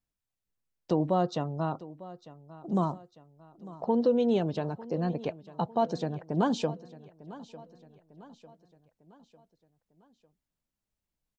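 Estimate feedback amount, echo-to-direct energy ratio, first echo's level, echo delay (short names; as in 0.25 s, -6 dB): 47%, -17.0 dB, -18.0 dB, 0.9 s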